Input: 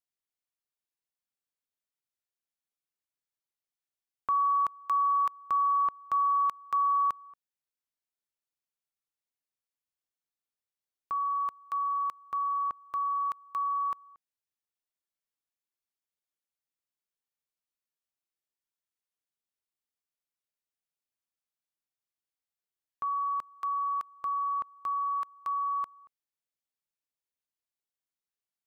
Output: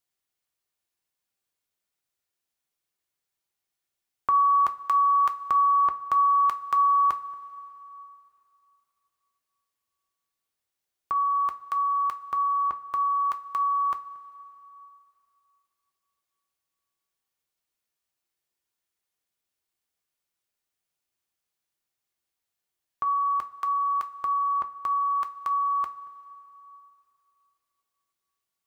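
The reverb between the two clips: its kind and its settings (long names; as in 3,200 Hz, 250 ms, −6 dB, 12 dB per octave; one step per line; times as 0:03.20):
coupled-rooms reverb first 0.22 s, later 3.1 s, from −19 dB, DRR 6.5 dB
level +7 dB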